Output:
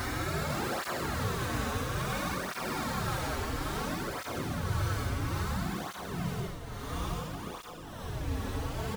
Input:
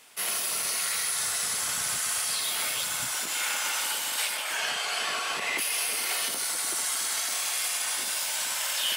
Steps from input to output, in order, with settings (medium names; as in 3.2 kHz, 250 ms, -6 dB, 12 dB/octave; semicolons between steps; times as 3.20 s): fade out at the end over 2.66 s; low-pass sweep 3.9 kHz -> 890 Hz, 5.35–8.46 s; Schmitt trigger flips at -36.5 dBFS; Paulstretch 15×, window 0.05 s, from 7.28 s; on a send: delay 500 ms -5.5 dB; on the sum: cancelling through-zero flanger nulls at 0.59 Hz, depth 6.4 ms